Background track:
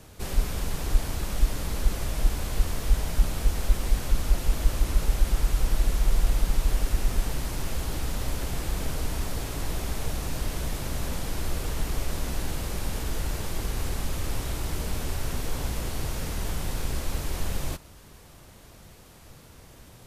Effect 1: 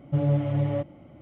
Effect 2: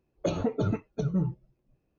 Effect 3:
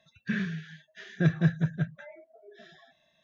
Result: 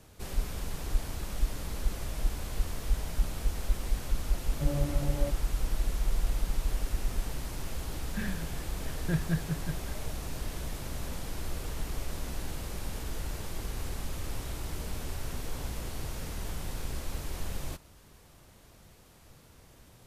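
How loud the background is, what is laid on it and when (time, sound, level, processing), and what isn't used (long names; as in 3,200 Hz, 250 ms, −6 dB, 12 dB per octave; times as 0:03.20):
background track −6.5 dB
0:04.48: mix in 1 −7 dB + high-pass filter 150 Hz
0:07.88: mix in 3 −6.5 dB
not used: 2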